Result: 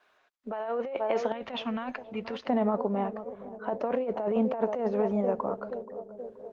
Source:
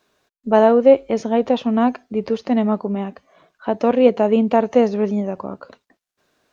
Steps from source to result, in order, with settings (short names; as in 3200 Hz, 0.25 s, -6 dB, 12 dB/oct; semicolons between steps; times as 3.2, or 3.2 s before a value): three-band isolator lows -13 dB, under 570 Hz, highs -16 dB, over 3300 Hz; narrowing echo 0.477 s, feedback 66%, band-pass 390 Hz, level -14.5 dB; negative-ratio compressor -26 dBFS, ratio -1; bell 98 Hz -11.5 dB 2.3 oct, from 1.32 s 540 Hz, from 2.49 s 3000 Hz; Opus 20 kbps 48000 Hz